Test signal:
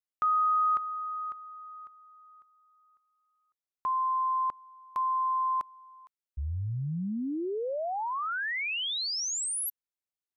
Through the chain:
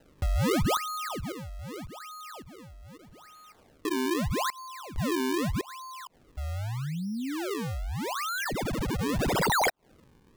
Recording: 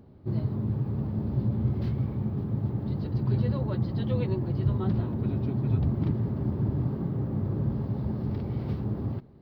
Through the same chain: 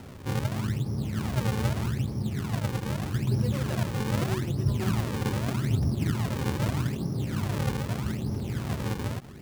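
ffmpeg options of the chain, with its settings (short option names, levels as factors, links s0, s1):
-af "aemphasis=mode=production:type=cd,acompressor=mode=upward:threshold=0.0251:ratio=2.5:attack=0.15:release=101:knee=2.83:detection=peak,acrusher=samples=38:mix=1:aa=0.000001:lfo=1:lforange=60.8:lforate=0.81"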